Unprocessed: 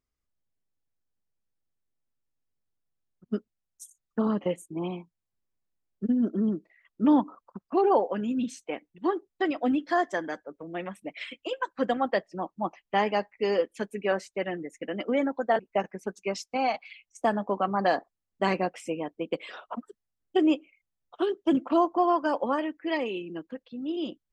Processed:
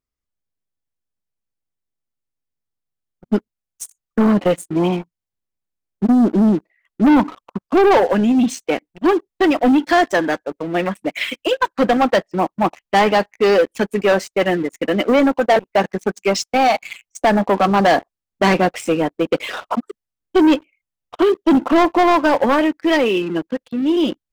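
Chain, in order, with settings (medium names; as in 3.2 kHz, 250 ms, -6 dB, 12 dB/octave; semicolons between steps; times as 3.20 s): waveshaping leveller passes 3; trim +4.5 dB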